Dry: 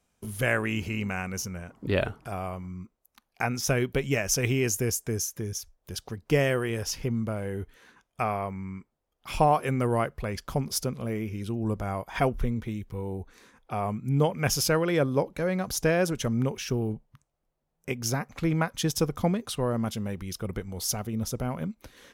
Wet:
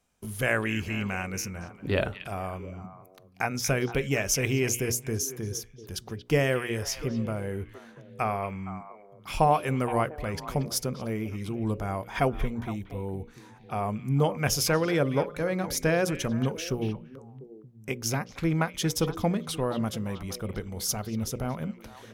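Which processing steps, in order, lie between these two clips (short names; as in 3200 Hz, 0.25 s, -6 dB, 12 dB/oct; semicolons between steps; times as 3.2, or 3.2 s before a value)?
notches 60/120/180/240/300/360/420/480/540/600 Hz; delay with a stepping band-pass 0.232 s, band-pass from 2700 Hz, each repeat -1.4 oct, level -8 dB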